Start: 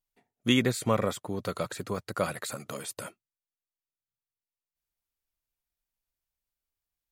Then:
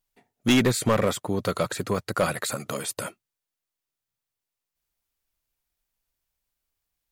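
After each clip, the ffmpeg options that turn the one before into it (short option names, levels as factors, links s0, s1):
-af "asoftclip=type=hard:threshold=0.0841,volume=2.24"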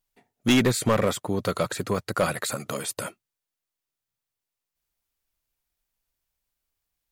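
-af anull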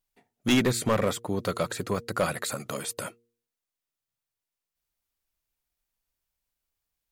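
-af "bandreject=f=117.4:t=h:w=4,bandreject=f=234.8:t=h:w=4,bandreject=f=352.2:t=h:w=4,bandreject=f=469.6:t=h:w=4,volume=0.75"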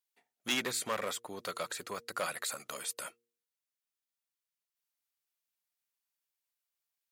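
-af "highpass=f=1200:p=1,volume=0.668"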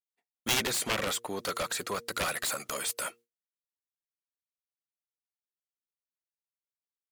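-af "agate=range=0.0224:threshold=0.00158:ratio=3:detection=peak,aeval=exprs='0.141*(cos(1*acos(clip(val(0)/0.141,-1,1)))-cos(1*PI/2))+0.0631*(cos(7*acos(clip(val(0)/0.141,-1,1)))-cos(7*PI/2))':c=same,volume=1.33"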